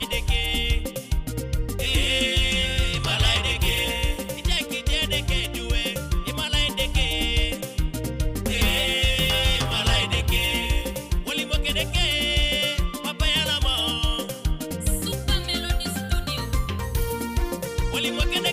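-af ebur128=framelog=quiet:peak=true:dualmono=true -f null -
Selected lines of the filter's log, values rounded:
Integrated loudness:
  I:         -20.6 LUFS
  Threshold: -30.6 LUFS
Loudness range:
  LRA:         4.0 LU
  Threshold: -40.4 LUFS
  LRA low:   -23.0 LUFS
  LRA high:  -19.1 LUFS
True peak:
  Peak:      -11.9 dBFS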